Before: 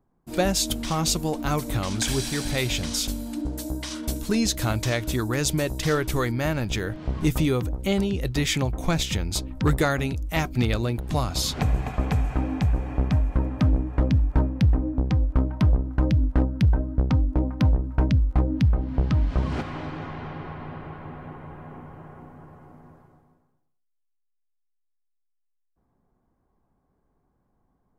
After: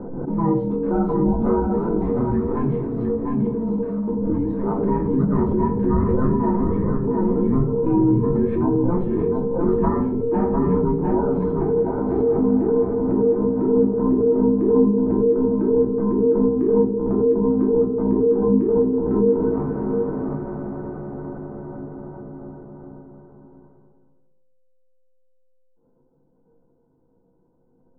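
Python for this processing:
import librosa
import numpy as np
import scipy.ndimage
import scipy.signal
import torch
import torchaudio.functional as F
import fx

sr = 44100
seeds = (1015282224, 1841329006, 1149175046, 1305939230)

p1 = fx.band_invert(x, sr, width_hz=500)
p2 = scipy.signal.sosfilt(scipy.signal.butter(4, 1100.0, 'lowpass', fs=sr, output='sos'), p1)
p3 = fx.peak_eq(p2, sr, hz=160.0, db=9.0, octaves=1.0)
p4 = fx.over_compress(p3, sr, threshold_db=-21.0, ratio=-0.5)
p5 = p3 + (p4 * 10.0 ** (0.5 / 20.0))
p6 = fx.comb_fb(p5, sr, f0_hz=190.0, decay_s=0.76, harmonics='odd', damping=0.0, mix_pct=60)
p7 = p6 + 10.0 ** (-5.0 / 20.0) * np.pad(p6, (int(705 * sr / 1000.0), 0))[:len(p6)]
p8 = fx.room_shoebox(p7, sr, seeds[0], volume_m3=250.0, walls='furnished', distance_m=2.7)
p9 = fx.pre_swell(p8, sr, db_per_s=34.0)
y = p9 * 10.0 ** (-4.0 / 20.0)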